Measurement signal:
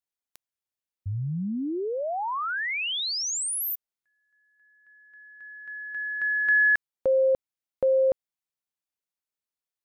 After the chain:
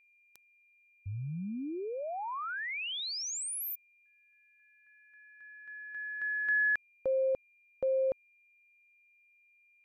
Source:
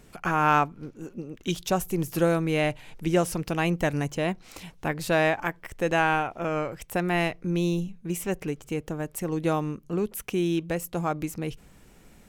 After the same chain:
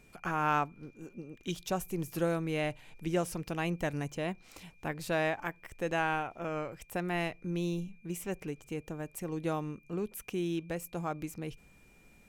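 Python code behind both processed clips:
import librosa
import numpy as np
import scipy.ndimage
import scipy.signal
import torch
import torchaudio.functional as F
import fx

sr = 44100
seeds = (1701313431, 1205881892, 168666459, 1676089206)

y = x + 10.0 ** (-56.0 / 20.0) * np.sin(2.0 * np.pi * 2400.0 * np.arange(len(x)) / sr)
y = y * 10.0 ** (-8.0 / 20.0)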